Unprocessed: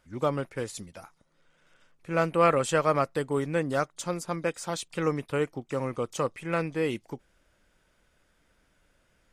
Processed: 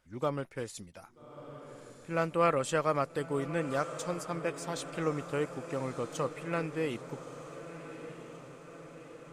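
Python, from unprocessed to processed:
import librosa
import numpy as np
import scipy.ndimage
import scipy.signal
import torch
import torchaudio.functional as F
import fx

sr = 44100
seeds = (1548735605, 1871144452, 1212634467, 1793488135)

y = fx.echo_diffused(x, sr, ms=1264, feedback_pct=60, wet_db=-12.0)
y = F.gain(torch.from_numpy(y), -5.0).numpy()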